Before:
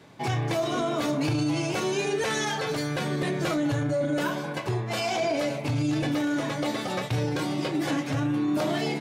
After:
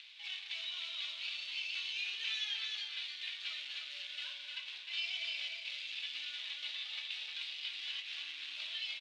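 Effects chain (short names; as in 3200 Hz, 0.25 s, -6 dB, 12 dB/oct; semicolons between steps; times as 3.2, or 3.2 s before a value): companded quantiser 4-bit; upward compressor, threshold -33 dBFS; Butterworth band-pass 3200 Hz, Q 2.1; on a send: echo 0.306 s -4 dB; on the sum: gain -2 dB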